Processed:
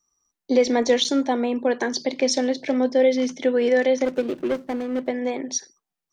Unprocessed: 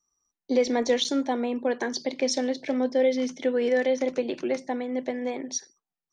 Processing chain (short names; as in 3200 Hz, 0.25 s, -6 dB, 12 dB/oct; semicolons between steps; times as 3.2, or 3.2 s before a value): 4.05–5.08 median filter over 41 samples; gain +4.5 dB